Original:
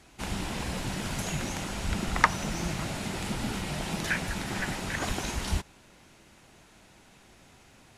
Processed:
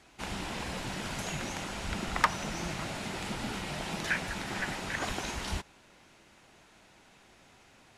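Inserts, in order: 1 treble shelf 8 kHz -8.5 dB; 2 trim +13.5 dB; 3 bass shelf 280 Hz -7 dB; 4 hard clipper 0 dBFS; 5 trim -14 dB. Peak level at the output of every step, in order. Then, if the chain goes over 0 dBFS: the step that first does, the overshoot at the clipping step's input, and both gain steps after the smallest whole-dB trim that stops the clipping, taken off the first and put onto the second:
-4.0 dBFS, +9.5 dBFS, +9.0 dBFS, 0.0 dBFS, -14.0 dBFS; step 2, 9.0 dB; step 2 +4.5 dB, step 5 -5 dB

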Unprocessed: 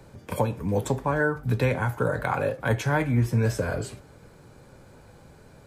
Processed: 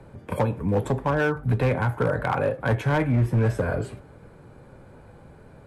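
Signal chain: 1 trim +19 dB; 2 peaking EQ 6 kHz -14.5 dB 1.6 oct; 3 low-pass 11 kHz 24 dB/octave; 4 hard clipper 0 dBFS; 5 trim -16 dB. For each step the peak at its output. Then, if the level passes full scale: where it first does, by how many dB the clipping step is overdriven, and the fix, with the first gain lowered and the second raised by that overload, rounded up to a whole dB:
+8.0 dBFS, +7.0 dBFS, +7.0 dBFS, 0.0 dBFS, -16.0 dBFS; step 1, 7.0 dB; step 1 +12 dB, step 5 -9 dB

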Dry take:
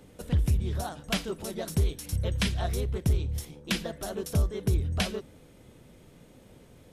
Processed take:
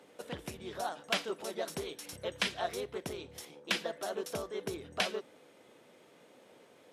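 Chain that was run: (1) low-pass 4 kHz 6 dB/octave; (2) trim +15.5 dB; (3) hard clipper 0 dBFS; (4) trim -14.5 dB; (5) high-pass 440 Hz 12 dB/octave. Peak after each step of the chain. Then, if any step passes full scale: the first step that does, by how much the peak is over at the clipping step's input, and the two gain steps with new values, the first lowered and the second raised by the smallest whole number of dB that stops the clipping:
-17.5 dBFS, -2.0 dBFS, -2.0 dBFS, -16.5 dBFS, -16.5 dBFS; nothing clips

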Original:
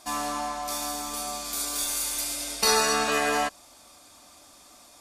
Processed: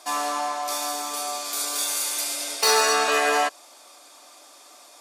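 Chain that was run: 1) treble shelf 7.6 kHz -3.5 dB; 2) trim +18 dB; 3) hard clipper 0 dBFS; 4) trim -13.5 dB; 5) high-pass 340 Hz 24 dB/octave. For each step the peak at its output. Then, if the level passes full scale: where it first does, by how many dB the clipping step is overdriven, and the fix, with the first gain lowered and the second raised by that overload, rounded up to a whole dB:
-10.0 dBFS, +8.0 dBFS, 0.0 dBFS, -13.5 dBFS, -7.5 dBFS; step 2, 8.0 dB; step 2 +10 dB, step 4 -5.5 dB

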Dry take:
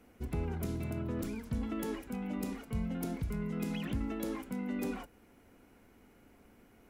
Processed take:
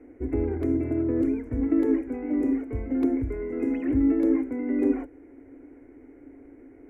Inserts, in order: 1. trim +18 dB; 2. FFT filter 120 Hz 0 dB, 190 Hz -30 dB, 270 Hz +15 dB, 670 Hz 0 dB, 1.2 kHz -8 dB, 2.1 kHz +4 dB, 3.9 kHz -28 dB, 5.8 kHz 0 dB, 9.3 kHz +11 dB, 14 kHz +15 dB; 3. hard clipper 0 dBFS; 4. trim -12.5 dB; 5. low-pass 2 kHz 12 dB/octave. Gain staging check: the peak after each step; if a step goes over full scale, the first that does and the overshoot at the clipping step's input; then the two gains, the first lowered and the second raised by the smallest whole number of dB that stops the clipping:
-6.5 dBFS, +6.5 dBFS, 0.0 dBFS, -12.5 dBFS, -12.5 dBFS; step 2, 6.5 dB; step 1 +11 dB, step 4 -5.5 dB

